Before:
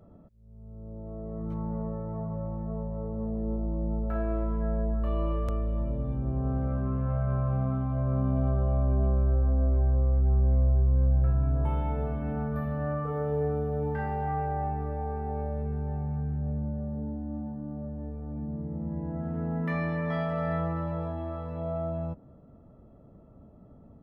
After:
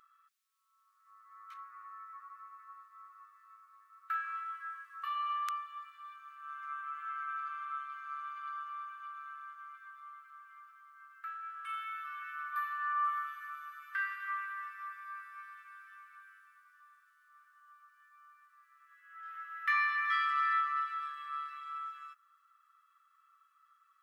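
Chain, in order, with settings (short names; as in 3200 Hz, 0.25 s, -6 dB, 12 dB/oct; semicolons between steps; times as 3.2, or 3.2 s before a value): brick-wall FIR high-pass 1100 Hz; gain +8 dB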